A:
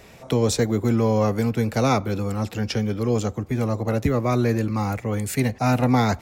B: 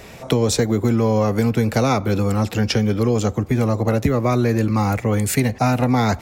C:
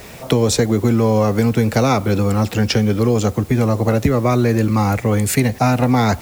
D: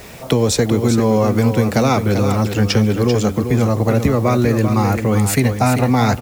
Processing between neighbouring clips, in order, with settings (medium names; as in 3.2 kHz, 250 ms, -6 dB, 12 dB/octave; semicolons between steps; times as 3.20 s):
compression, threshold -21 dBFS, peak gain reduction 7 dB; trim +7.5 dB
word length cut 8-bit, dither triangular; trim +2.5 dB
delay 391 ms -8 dB